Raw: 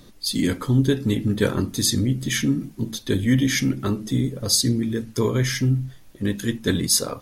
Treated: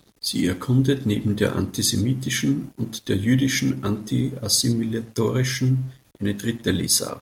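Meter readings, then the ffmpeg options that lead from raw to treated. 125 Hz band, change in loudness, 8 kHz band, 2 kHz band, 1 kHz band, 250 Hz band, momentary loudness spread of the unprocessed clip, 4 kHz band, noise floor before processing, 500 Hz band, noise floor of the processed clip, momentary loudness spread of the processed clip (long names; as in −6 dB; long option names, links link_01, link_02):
−0.5 dB, −0.5 dB, 0.0 dB, −0.5 dB, −0.5 dB, −0.5 dB, 7 LU, −0.5 dB, −48 dBFS, −0.5 dB, −58 dBFS, 7 LU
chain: -filter_complex "[0:a]asplit=2[link_01][link_02];[link_02]aecho=0:1:108:0.0841[link_03];[link_01][link_03]amix=inputs=2:normalize=0,aeval=exprs='sgn(val(0))*max(abs(val(0))-0.00398,0)':channel_layout=same,highpass=46"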